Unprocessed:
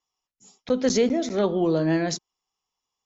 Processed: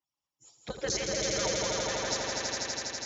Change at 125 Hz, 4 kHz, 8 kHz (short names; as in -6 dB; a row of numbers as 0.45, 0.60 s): -11.0 dB, +3.5 dB, n/a